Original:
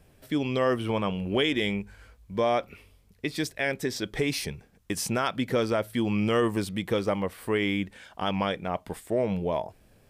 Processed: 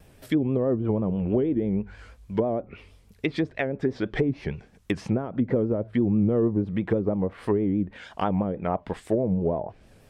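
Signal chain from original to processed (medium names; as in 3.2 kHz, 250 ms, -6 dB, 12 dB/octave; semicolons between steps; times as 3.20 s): low-pass that closes with the level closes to 410 Hz, closed at -23 dBFS; vibrato 6.2 Hz 89 cents; trim +5 dB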